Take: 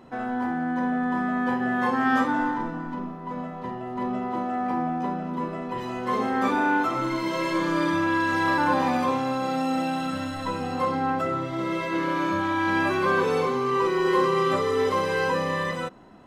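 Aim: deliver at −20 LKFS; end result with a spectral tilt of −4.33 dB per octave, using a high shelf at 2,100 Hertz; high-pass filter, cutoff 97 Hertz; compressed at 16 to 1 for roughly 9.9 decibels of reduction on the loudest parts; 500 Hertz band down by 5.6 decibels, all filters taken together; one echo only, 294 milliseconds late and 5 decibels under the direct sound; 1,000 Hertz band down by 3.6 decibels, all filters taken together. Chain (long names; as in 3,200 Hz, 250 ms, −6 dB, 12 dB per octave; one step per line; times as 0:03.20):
high-pass filter 97 Hz
parametric band 500 Hz −7 dB
parametric band 1,000 Hz −4 dB
high-shelf EQ 2,100 Hz +7 dB
downward compressor 16 to 1, threshold −30 dBFS
single-tap delay 294 ms −5 dB
level +13 dB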